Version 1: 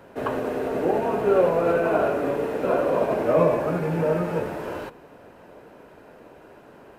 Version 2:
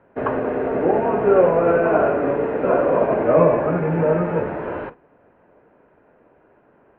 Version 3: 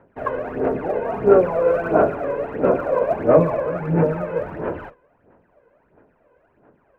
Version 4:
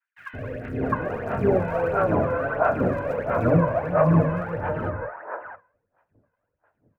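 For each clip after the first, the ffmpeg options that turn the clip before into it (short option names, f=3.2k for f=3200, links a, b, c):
-af "lowpass=f=2.3k:w=0.5412,lowpass=f=2.3k:w=1.3066,agate=range=-12dB:threshold=-39dB:ratio=16:detection=peak,volume=4.5dB"
-af "aphaser=in_gain=1:out_gain=1:delay=2:decay=0.67:speed=1.5:type=sinusoidal,volume=-6dB"
-filter_complex "[0:a]agate=range=-33dB:threshold=-47dB:ratio=3:detection=peak,equalizer=f=100:t=o:w=0.67:g=11,equalizer=f=400:t=o:w=0.67:g=-7,equalizer=f=1.6k:t=o:w=0.67:g=5,acrossover=split=540|1800[a][b][c];[a]adelay=170[d];[b]adelay=660[e];[d][e][c]amix=inputs=3:normalize=0"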